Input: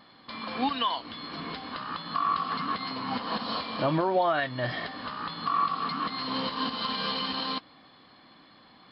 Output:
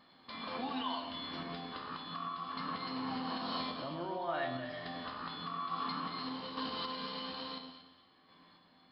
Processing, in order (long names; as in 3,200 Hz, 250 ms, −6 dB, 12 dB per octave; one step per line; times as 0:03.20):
brickwall limiter −22.5 dBFS, peak gain reduction 6 dB
tuned comb filter 86 Hz, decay 0.81 s, harmonics all, mix 80%
sample-and-hold tremolo
on a send: delay that swaps between a low-pass and a high-pass 116 ms, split 1,000 Hz, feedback 53%, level −6 dB
on the sum: level +4.5 dB